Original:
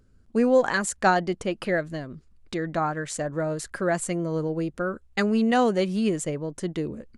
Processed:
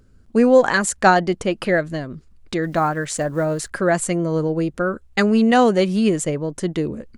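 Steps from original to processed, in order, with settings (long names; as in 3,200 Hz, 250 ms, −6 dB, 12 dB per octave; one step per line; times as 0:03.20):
0:02.63–0:03.72: one scale factor per block 7 bits
level +6.5 dB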